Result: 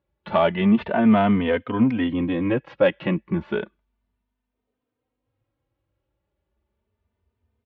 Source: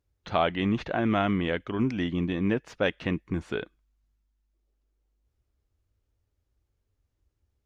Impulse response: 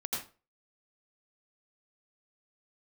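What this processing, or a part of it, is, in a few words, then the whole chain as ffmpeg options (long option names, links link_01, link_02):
barber-pole flanger into a guitar amplifier: -filter_complex "[0:a]asplit=2[link_01][link_02];[link_02]adelay=3.1,afreqshift=0.32[link_03];[link_01][link_03]amix=inputs=2:normalize=1,asoftclip=type=tanh:threshold=-17.5dB,highpass=84,equalizer=frequency=220:width_type=q:width=4:gain=6,equalizer=frequency=540:width_type=q:width=4:gain=6,equalizer=frequency=940:width_type=q:width=4:gain=6,lowpass=frequency=3400:width=0.5412,lowpass=frequency=3400:width=1.3066,volume=7dB"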